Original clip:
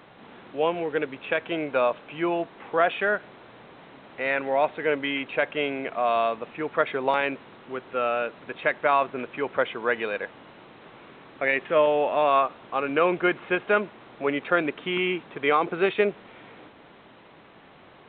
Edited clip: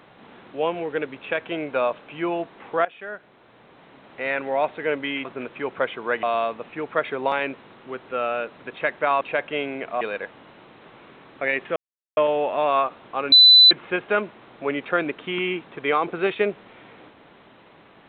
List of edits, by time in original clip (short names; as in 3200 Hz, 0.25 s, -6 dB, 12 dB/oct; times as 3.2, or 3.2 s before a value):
2.85–4.23 fade in, from -17 dB
5.25–6.05 swap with 9.03–10.01
11.76 insert silence 0.41 s
12.91–13.3 bleep 4000 Hz -7.5 dBFS